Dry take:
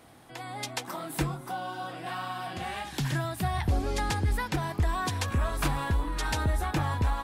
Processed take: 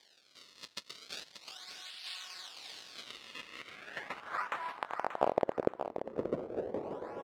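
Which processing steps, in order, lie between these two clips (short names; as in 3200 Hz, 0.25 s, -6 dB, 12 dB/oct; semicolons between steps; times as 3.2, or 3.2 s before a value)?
4.79–6.04 sample sorter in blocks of 128 samples; differentiator; in parallel at -1 dB: compressor, threshold -47 dBFS, peak gain reduction 16.5 dB; on the sum: decimation with a swept rate 32×, swing 160% 0.37 Hz; band-pass sweep 4300 Hz -> 470 Hz, 2.85–5.69; on a send: feedback echo 0.583 s, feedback 22%, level -9 dB; on the sum: gain +10 dB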